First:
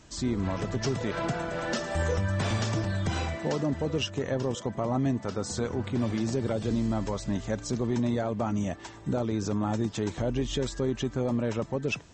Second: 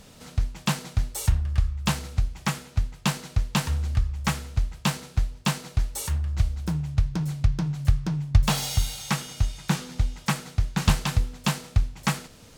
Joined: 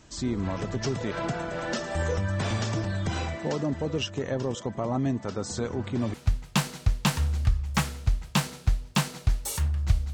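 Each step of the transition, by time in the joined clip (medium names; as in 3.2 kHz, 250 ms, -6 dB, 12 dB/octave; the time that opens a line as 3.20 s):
first
6.14 s: go over to second from 2.64 s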